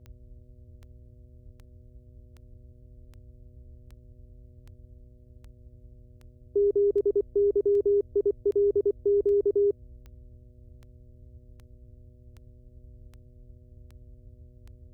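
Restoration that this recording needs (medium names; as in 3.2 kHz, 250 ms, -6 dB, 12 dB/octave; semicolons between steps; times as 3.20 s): de-click; de-hum 122.8 Hz, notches 5; noise print and reduce 18 dB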